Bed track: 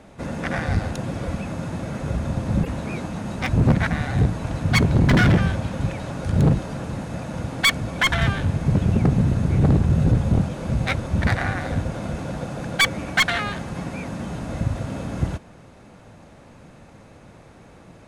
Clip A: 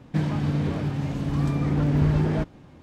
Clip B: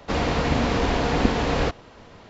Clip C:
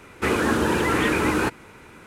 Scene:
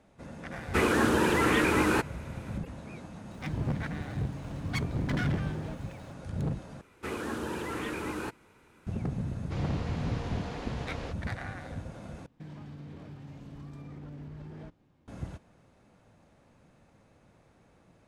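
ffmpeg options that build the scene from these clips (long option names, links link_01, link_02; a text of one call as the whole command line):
ffmpeg -i bed.wav -i cue0.wav -i cue1.wav -i cue2.wav -filter_complex "[3:a]asplit=2[link_01][link_02];[1:a]asplit=2[link_03][link_04];[0:a]volume=-15dB[link_05];[link_03]aeval=exprs='val(0)+0.5*0.0133*sgn(val(0))':channel_layout=same[link_06];[link_02]equalizer=frequency=1900:width_type=o:width=0.77:gain=-2.5[link_07];[link_04]acompressor=threshold=-22dB:ratio=6:attack=3.2:release=140:knee=1:detection=peak[link_08];[link_05]asplit=3[link_09][link_10][link_11];[link_09]atrim=end=6.814[link_12];[link_07]atrim=end=2.06,asetpts=PTS-STARTPTS,volume=-13.5dB[link_13];[link_10]atrim=start=8.866:end=12.264[link_14];[link_08]atrim=end=2.82,asetpts=PTS-STARTPTS,volume=-18dB[link_15];[link_11]atrim=start=15.076[link_16];[link_01]atrim=end=2.06,asetpts=PTS-STARTPTS,volume=-3.5dB,afade=type=in:duration=0.004:curve=hsin,afade=type=out:start_time=2.056:duration=0.004:curve=hsin,adelay=520[link_17];[link_06]atrim=end=2.82,asetpts=PTS-STARTPTS,volume=-15dB,afade=type=in:duration=0.004:curve=hsin,afade=type=out:start_time=2.816:duration=0.004:curve=hsin,adelay=3310[link_18];[2:a]atrim=end=2.29,asetpts=PTS-STARTPTS,volume=-17dB,afade=type=in:duration=0.004:curve=hsin,afade=type=out:start_time=2.286:duration=0.004:curve=hsin,adelay=9420[link_19];[link_12][link_13]acrossfade=duration=0.004:curve1=hsin:curve2=hsin[link_20];[link_20][link_14]acrossfade=duration=0.004:curve1=hsin:curve2=hsin[link_21];[link_21][link_15]acrossfade=duration=0.004:curve1=hsin:curve2=hsin[link_22];[link_22][link_16]acrossfade=duration=0.004:curve1=hsin:curve2=hsin[link_23];[link_23][link_17][link_18][link_19]amix=inputs=4:normalize=0" out.wav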